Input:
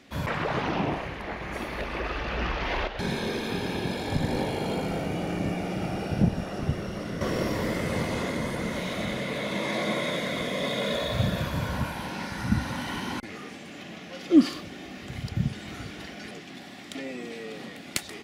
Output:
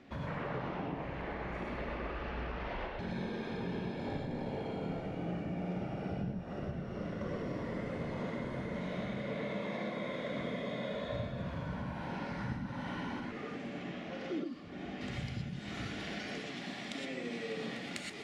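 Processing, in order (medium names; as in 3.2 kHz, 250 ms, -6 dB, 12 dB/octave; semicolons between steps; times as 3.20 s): treble shelf 2.5 kHz -11 dB, from 15.01 s +2 dB; compression 6:1, threshold -37 dBFS, peak gain reduction 23 dB; distance through air 69 m; gated-style reverb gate 140 ms rising, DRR 0 dB; trim -1.5 dB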